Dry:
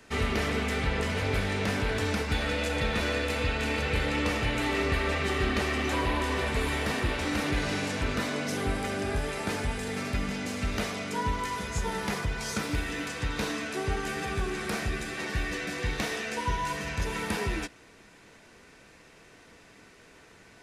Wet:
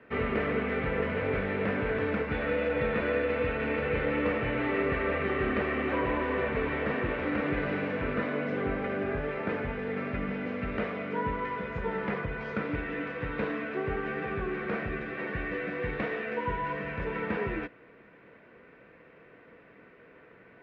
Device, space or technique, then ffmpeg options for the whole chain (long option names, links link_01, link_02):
bass cabinet: -af "highpass=61,equalizer=frequency=66:width_type=q:width=4:gain=-9,equalizer=frequency=95:width_type=q:width=4:gain=-6,equalizer=frequency=500:width_type=q:width=4:gain=6,equalizer=frequency=830:width_type=q:width=4:gain=-5,lowpass=frequency=2300:width=0.5412,lowpass=frequency=2300:width=1.3066"